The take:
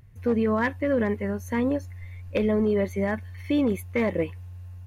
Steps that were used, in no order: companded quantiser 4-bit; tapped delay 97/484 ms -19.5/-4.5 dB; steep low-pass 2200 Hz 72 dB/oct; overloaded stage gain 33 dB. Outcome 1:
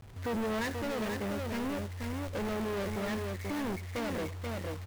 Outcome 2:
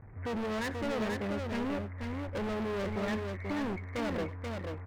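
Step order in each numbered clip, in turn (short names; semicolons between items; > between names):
steep low-pass > overloaded stage > tapped delay > companded quantiser; companded quantiser > steep low-pass > overloaded stage > tapped delay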